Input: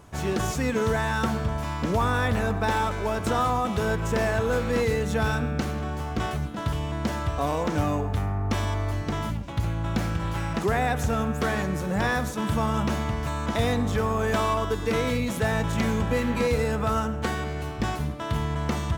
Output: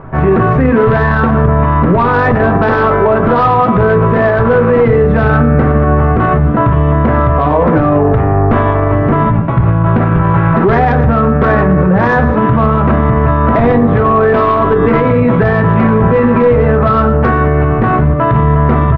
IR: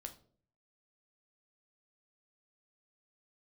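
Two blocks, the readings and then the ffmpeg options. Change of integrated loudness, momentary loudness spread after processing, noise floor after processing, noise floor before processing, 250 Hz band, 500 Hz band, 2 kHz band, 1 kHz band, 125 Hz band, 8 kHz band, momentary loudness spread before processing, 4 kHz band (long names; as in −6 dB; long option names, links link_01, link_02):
+16.0 dB, 2 LU, −12 dBFS, −32 dBFS, +16.5 dB, +17.0 dB, +13.0 dB, +16.5 dB, +17.0 dB, below −20 dB, 5 LU, can't be measured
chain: -filter_complex "[0:a]lowpass=frequency=1800:width=0.5412,lowpass=frequency=1800:width=1.3066,dynaudnorm=framelen=150:gausssize=3:maxgain=3dB,aeval=exprs='0.299*(cos(1*acos(clip(val(0)/0.299,-1,1)))-cos(1*PI/2))+0.0944*(cos(2*acos(clip(val(0)/0.299,-1,1)))-cos(2*PI/2))+0.0266*(cos(4*acos(clip(val(0)/0.299,-1,1)))-cos(4*PI/2))+0.0119*(cos(5*acos(clip(val(0)/0.299,-1,1)))-cos(5*PI/2))':channel_layout=same,asplit=2[link_01][link_02];[link_02]asoftclip=type=tanh:threshold=-18dB,volume=-12dB[link_03];[link_01][link_03]amix=inputs=2:normalize=0,aecho=1:1:114:0.133[link_04];[1:a]atrim=start_sample=2205,asetrate=83790,aresample=44100[link_05];[link_04][link_05]afir=irnorm=-1:irlink=0,alimiter=level_in=27dB:limit=-1dB:release=50:level=0:latency=1,volume=-1dB"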